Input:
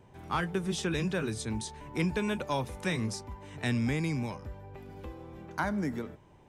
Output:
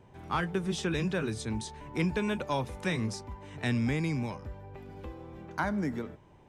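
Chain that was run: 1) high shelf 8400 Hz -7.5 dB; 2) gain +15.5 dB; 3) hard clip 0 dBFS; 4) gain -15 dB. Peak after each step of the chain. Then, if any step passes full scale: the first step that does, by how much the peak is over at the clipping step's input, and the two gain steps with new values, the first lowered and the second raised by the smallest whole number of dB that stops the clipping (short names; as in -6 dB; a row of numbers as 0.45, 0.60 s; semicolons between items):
-19.5, -4.0, -4.0, -19.0 dBFS; no overload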